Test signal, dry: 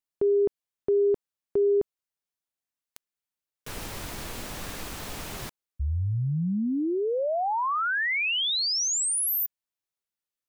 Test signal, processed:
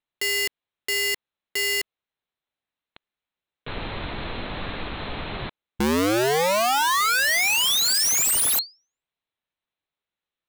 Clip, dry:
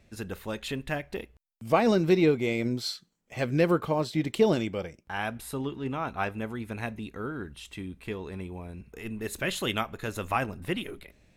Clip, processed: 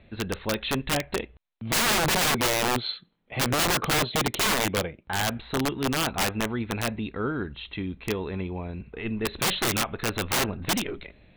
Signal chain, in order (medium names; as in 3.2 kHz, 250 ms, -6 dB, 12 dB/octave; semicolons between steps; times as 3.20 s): Chebyshev low-pass 4.1 kHz, order 8; integer overflow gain 25 dB; trim +7 dB